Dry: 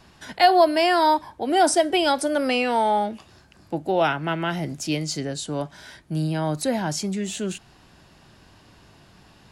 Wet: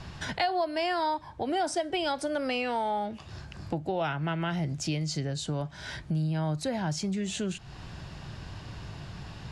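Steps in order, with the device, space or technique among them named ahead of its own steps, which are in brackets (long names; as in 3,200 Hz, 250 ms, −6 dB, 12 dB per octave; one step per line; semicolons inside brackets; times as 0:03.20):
jukebox (low-pass filter 7,100 Hz 12 dB per octave; low shelf with overshoot 180 Hz +6.5 dB, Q 1.5; downward compressor 3 to 1, threshold −39 dBFS, peak gain reduction 20 dB)
level +6.5 dB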